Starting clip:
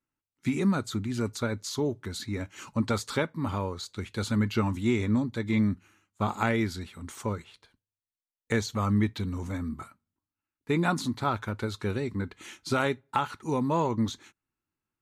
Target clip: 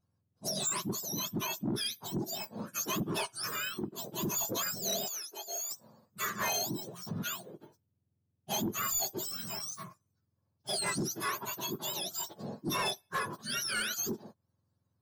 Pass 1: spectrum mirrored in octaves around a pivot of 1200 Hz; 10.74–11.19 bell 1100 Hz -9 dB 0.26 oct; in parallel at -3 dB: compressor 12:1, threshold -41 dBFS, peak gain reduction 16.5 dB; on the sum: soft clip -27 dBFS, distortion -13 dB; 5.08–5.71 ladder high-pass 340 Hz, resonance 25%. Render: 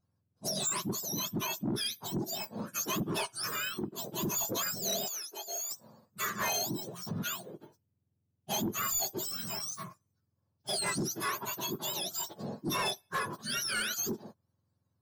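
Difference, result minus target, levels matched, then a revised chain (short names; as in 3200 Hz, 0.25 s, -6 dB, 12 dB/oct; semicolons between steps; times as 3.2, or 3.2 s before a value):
compressor: peak gain reduction -10 dB
spectrum mirrored in octaves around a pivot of 1200 Hz; 10.74–11.19 bell 1100 Hz -9 dB 0.26 oct; in parallel at -3 dB: compressor 12:1, threshold -52 dBFS, peak gain reduction 27 dB; on the sum: soft clip -27 dBFS, distortion -14 dB; 5.08–5.71 ladder high-pass 340 Hz, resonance 25%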